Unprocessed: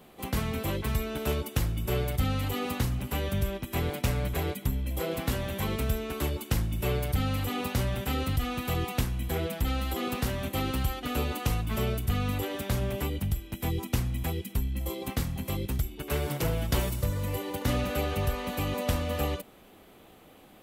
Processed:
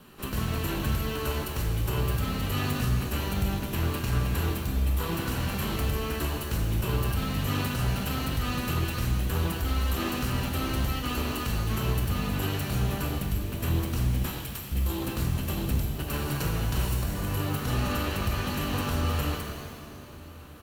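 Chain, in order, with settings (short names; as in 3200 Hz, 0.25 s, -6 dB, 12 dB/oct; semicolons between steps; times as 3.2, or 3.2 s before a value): minimum comb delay 0.71 ms; 14.26–14.72 HPF 780 Hz 12 dB/oct; limiter -24.5 dBFS, peak gain reduction 10.5 dB; outdoor echo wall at 210 m, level -19 dB; shimmer reverb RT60 1.9 s, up +7 st, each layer -8 dB, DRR 2 dB; gain +2.5 dB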